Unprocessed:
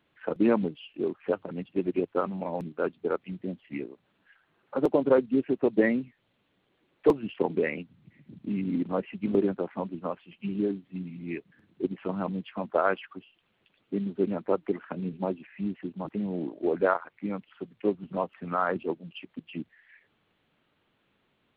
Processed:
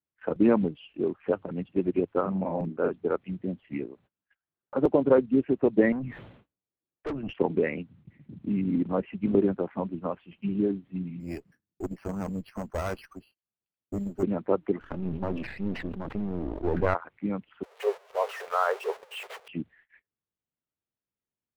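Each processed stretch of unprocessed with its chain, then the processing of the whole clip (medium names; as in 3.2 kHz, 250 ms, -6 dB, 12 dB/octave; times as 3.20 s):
2.21–2.97 s: treble shelf 3.5 kHz -10 dB + doubling 42 ms -4.5 dB
5.92–7.33 s: treble shelf 3.1 kHz -10.5 dB + valve stage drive 31 dB, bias 0.4 + decay stretcher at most 64 dB/s
11.20–14.23 s: careless resampling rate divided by 6×, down filtered, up hold + valve stage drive 27 dB, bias 0.65
14.80–16.95 s: partial rectifier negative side -12 dB + decay stretcher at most 45 dB/s
17.63–19.48 s: jump at every zero crossing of -32 dBFS + brick-wall FIR high-pass 390 Hz + gate -42 dBFS, range -13 dB
whole clip: treble shelf 3.4 kHz -10 dB; gate -58 dBFS, range -28 dB; peaking EQ 61 Hz +8 dB 2.1 oct; trim +1 dB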